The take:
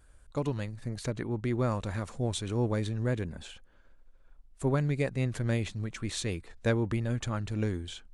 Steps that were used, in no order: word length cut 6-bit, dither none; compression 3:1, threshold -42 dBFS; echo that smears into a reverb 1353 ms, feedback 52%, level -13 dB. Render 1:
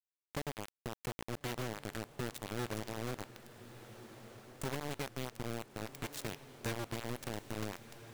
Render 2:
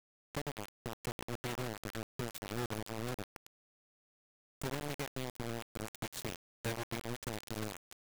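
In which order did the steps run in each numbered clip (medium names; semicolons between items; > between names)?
compression > word length cut > echo that smears into a reverb; compression > echo that smears into a reverb > word length cut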